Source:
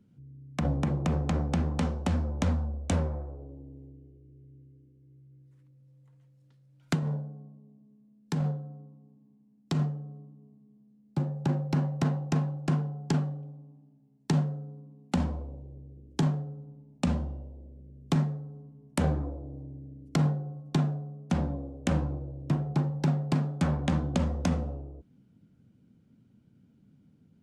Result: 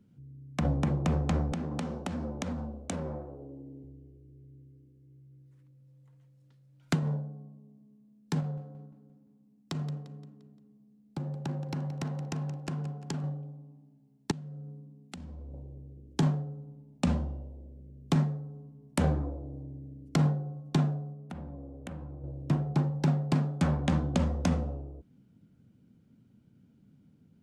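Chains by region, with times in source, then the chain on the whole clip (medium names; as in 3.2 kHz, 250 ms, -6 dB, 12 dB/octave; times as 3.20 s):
1.52–3.84 s: high-pass 180 Hz + bass shelf 360 Hz +6 dB + compression, threshold -30 dBFS
8.40–13.24 s: compression 4:1, threshold -32 dBFS + feedback delay 174 ms, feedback 48%, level -14 dB
14.31–15.54 s: peaking EQ 920 Hz -7.5 dB 1.9 oct + compression 16:1, threshold -39 dBFS
21.13–22.24 s: peaking EQ 6 kHz -10.5 dB 1.5 oct + compression 3:1, threshold -42 dBFS
whole clip: none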